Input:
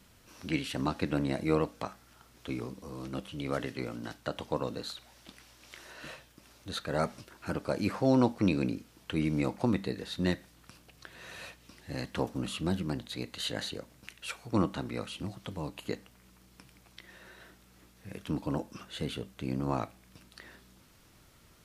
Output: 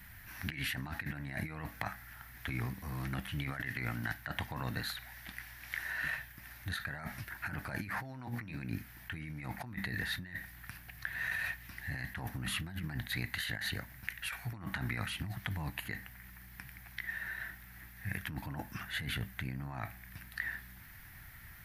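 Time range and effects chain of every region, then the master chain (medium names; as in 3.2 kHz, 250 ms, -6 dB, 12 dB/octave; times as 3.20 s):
8.08–8.57 s: hum notches 60/120/180/240/300/360/420/480/540 Hz + doubling 17 ms -12.5 dB
whole clip: FFT filter 110 Hz 0 dB, 510 Hz -21 dB, 750 Hz -5 dB, 1.2 kHz -8 dB, 1.8 kHz +9 dB, 2.8 kHz -7 dB, 7.9 kHz -13 dB, 13 kHz +6 dB; compressor with a negative ratio -44 dBFS, ratio -1; trim +5 dB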